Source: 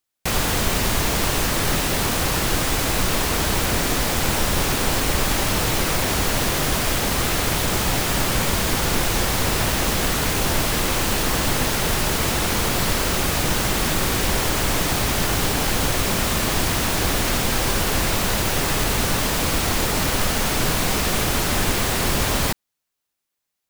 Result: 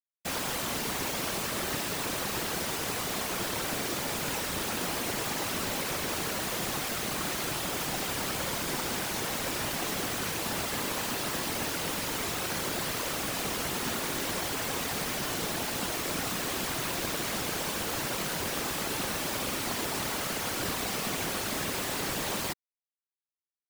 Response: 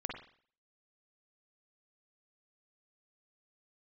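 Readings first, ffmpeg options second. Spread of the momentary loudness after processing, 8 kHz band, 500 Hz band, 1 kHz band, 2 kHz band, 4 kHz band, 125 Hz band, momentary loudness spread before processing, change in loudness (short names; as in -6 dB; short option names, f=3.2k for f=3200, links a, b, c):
0 LU, -10.0 dB, -10.0 dB, -10.0 dB, -10.0 dB, -10.0 dB, -16.0 dB, 0 LU, -10.5 dB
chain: -af "highpass=150,acrusher=bits=5:mix=0:aa=0.000001,afftfilt=real='hypot(re,im)*cos(2*PI*random(0))':imag='hypot(re,im)*sin(2*PI*random(1))':win_size=512:overlap=0.75,volume=-4dB"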